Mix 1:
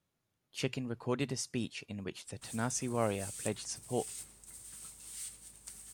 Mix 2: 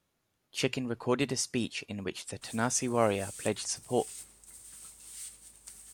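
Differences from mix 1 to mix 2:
speech +6.5 dB
master: add parametric band 130 Hz −5.5 dB 1.4 octaves

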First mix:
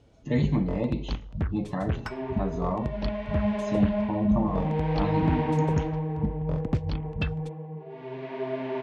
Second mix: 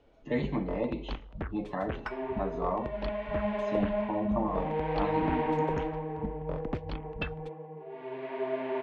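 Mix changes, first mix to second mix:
first sound: remove high-pass filter 71 Hz 12 dB per octave
master: add three-way crossover with the lows and the highs turned down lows −14 dB, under 270 Hz, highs −16 dB, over 3,600 Hz

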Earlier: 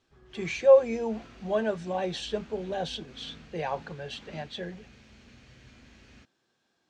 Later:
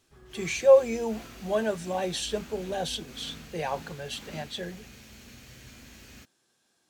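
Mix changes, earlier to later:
background +3.5 dB
master: remove high-frequency loss of the air 130 metres

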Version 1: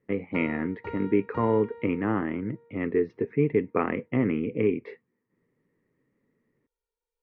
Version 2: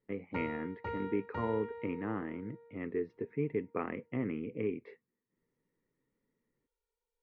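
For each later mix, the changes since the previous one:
speech −10.5 dB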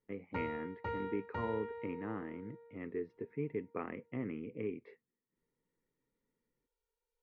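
speech −4.5 dB

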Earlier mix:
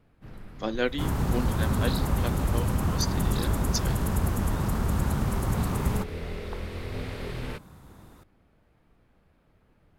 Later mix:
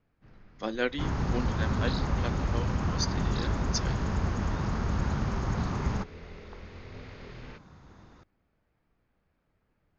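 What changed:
first sound −8.0 dB
master: add Chebyshev low-pass with heavy ripple 6,700 Hz, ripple 3 dB

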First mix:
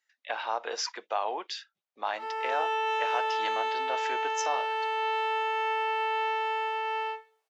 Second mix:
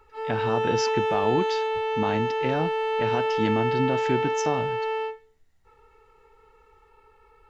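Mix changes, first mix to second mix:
background: entry −2.05 s
master: remove high-pass filter 580 Hz 24 dB per octave

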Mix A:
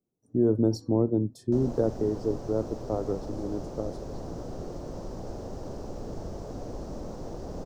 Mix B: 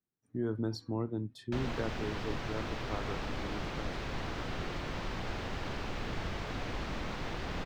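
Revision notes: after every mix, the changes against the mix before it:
speech −8.5 dB
master: remove drawn EQ curve 140 Hz 0 dB, 570 Hz +5 dB, 2,200 Hz −23 dB, 3,600 Hz −17 dB, 5,700 Hz 0 dB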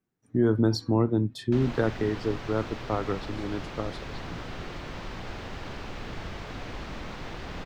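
speech +11.5 dB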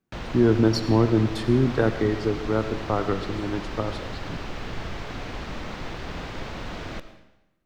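background: entry −1.40 s
reverb: on, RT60 0.95 s

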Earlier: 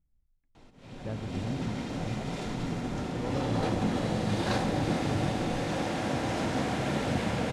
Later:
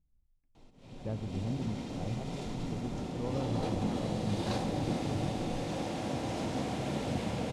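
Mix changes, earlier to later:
background −4.0 dB
master: add parametric band 1,600 Hz −7.5 dB 0.91 octaves

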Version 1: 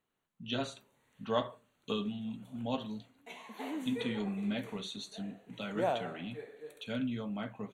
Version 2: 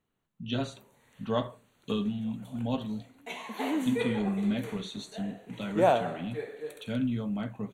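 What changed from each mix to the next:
speech: add low-shelf EQ 260 Hz +10.5 dB
background +9.0 dB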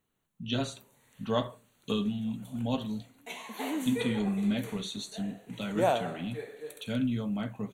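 background −3.5 dB
master: add high-shelf EQ 5,100 Hz +10 dB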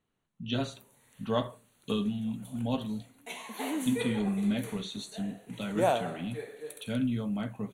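speech: add high-frequency loss of the air 74 metres
master: add parametric band 10,000 Hz +8.5 dB 0.2 octaves

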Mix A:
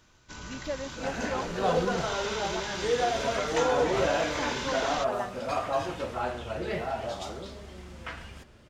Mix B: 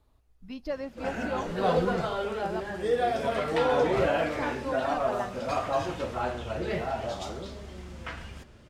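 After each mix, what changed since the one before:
first sound: muted
master: add low-shelf EQ 380 Hz +3 dB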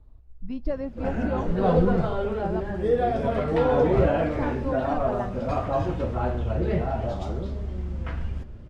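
master: add spectral tilt −3.5 dB per octave

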